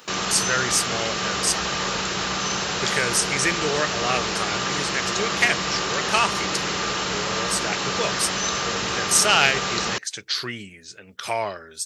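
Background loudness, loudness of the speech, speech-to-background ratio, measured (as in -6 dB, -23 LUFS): -24.0 LUFS, -24.0 LUFS, 0.0 dB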